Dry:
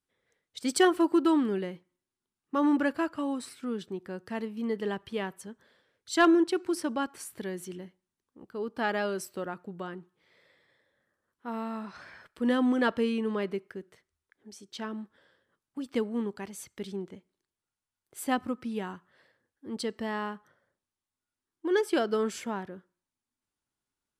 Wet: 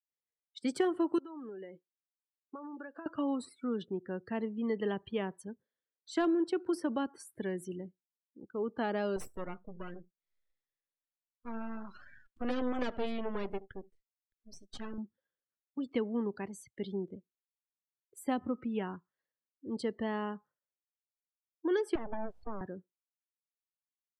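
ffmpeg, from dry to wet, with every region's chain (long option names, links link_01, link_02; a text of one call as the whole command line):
ffmpeg -i in.wav -filter_complex "[0:a]asettb=1/sr,asplit=3[link_01][link_02][link_03];[link_01]atrim=end=1.184[link_04];[link_02]atrim=start=1.18:end=3.06,asetpts=PTS-STARTPTS,afade=type=in:duration=0.004:curve=qsin,afade=type=out:start_time=1.876:duration=0.004:curve=qsin,bass=frequency=250:gain=-15,treble=frequency=4000:gain=-2,acompressor=threshold=-40dB:ratio=20:attack=3.2:release=140:knee=1:detection=peak[link_05];[link_03]atrim=start=3.056[link_06];[link_04][link_05]acrossfade=duration=0.004:curve1=hsin:curve2=qsin[link_07];[link_07][link_06]acrossfade=duration=0.004:curve1=qsin:curve2=hsin,asettb=1/sr,asplit=3[link_08][link_09][link_10];[link_08]atrim=end=9.164[link_11];[link_09]atrim=start=9.16:end=14.98,asetpts=PTS-STARTPTS,afade=type=in:duration=0.004:curve=qsin,afade=type=out:start_time=5.816:duration=0.004:curve=qsin,highshelf=frequency=3200:gain=8,aecho=1:1:75:0.119,atrim=end_sample=256662,aeval=exprs='max(val(0),0)':channel_layout=same[link_12];[link_10]atrim=start=14.976[link_13];[link_11][link_12]acrossfade=duration=0.004:curve1=hsin:curve2=qsin[link_14];[link_14][link_13]acrossfade=duration=0.004:curve1=qsin:curve2=hsin,asettb=1/sr,asplit=3[link_15][link_16][link_17];[link_15]atrim=end=21.954[link_18];[link_16]atrim=start=21.95:end=22.61,asetpts=PTS-STARTPTS,afade=type=in:duration=0.004:curve=qsin,afade=type=out:start_time=0.656:duration=0.004:curve=qsin,equalizer=frequency=7500:width=0.45:gain=-14,acrossover=split=360|880[link_19][link_20][link_21];[link_19]acompressor=threshold=-34dB:ratio=4[link_22];[link_20]acompressor=threshold=-41dB:ratio=4[link_23];[link_21]acompressor=threshold=-51dB:ratio=4[link_24];[link_22][link_23][link_24]amix=inputs=3:normalize=0,aeval=exprs='abs(val(0))':channel_layout=same[link_25];[link_17]atrim=start=22.606[link_26];[link_18][link_25]acrossfade=duration=0.004:curve1=hsin:curve2=qsin[link_27];[link_27][link_26]acrossfade=duration=0.004:curve1=qsin:curve2=hsin,afftdn=noise_reduction=30:noise_floor=-47,acrossover=split=330|850|2500[link_28][link_29][link_30][link_31];[link_28]acompressor=threshold=-34dB:ratio=4[link_32];[link_29]acompressor=threshold=-33dB:ratio=4[link_33];[link_30]acompressor=threshold=-46dB:ratio=4[link_34];[link_31]acompressor=threshold=-51dB:ratio=4[link_35];[link_32][link_33][link_34][link_35]amix=inputs=4:normalize=0" out.wav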